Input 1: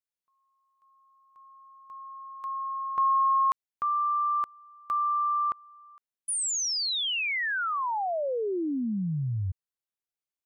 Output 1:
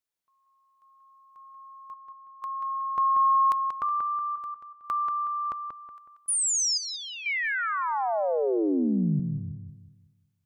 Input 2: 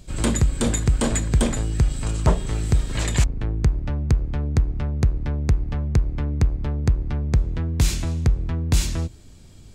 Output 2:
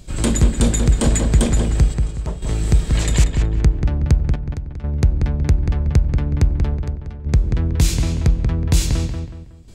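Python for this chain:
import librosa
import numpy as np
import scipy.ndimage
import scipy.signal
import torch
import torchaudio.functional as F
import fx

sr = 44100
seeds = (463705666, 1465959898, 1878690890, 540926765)

y = fx.dynamic_eq(x, sr, hz=1300.0, q=0.74, threshold_db=-38.0, ratio=4.0, max_db=-4)
y = fx.step_gate(y, sr, bpm=62, pattern='xxxxxxxx..', floor_db=-12.0, edge_ms=4.5)
y = fx.echo_filtered(y, sr, ms=185, feedback_pct=37, hz=3100.0, wet_db=-5.0)
y = y * librosa.db_to_amplitude(3.5)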